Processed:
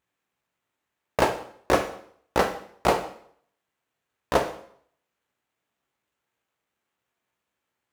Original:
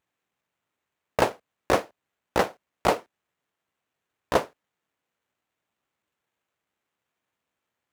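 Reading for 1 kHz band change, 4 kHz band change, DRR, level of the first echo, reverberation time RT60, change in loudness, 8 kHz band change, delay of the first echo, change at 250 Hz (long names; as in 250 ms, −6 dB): +1.5 dB, +1.0 dB, 5.0 dB, no echo audible, 0.60 s, +0.5 dB, +1.0 dB, no echo audible, +1.5 dB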